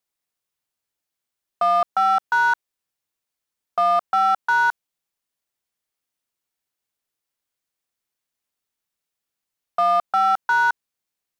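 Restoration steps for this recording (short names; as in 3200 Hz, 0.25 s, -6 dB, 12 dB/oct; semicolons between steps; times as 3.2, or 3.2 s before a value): clip repair -13 dBFS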